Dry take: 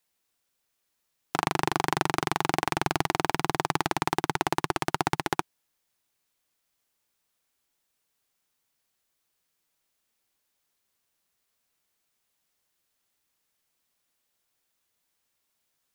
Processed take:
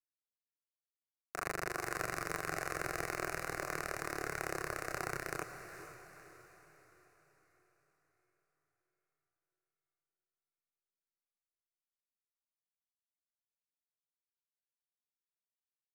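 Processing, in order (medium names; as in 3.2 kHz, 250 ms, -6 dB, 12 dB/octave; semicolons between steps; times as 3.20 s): power-law waveshaper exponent 1.4; chorus voices 4, 0.16 Hz, delay 29 ms, depth 4.4 ms; static phaser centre 890 Hz, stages 6; on a send: echo that smears into a reverb 463 ms, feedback 48%, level -10 dB; on the sum: trim -2 dB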